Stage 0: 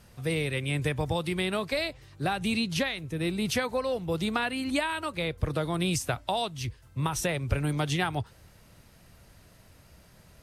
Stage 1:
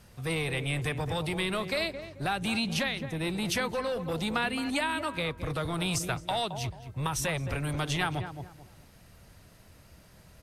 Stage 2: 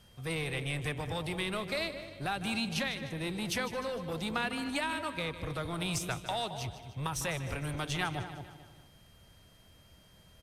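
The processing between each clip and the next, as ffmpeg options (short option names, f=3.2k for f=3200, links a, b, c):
-filter_complex "[0:a]asplit=2[a][b];[b]adelay=218,lowpass=f=1.4k:p=1,volume=-10dB,asplit=2[c][d];[d]adelay=218,lowpass=f=1.4k:p=1,volume=0.31,asplit=2[e][f];[f]adelay=218,lowpass=f=1.4k:p=1,volume=0.31[g];[a][c][e][g]amix=inputs=4:normalize=0,acrossover=split=930[h][i];[h]volume=29.5dB,asoftclip=hard,volume=-29.5dB[j];[j][i]amix=inputs=2:normalize=0"
-af "aeval=exprs='0.168*(cos(1*acos(clip(val(0)/0.168,-1,1)))-cos(1*PI/2))+0.00422*(cos(7*acos(clip(val(0)/0.168,-1,1)))-cos(7*PI/2))':c=same,aeval=exprs='val(0)+0.001*sin(2*PI*3200*n/s)':c=same,aecho=1:1:152|304|456|608|760:0.211|0.11|0.0571|0.0297|0.0155,volume=-3.5dB"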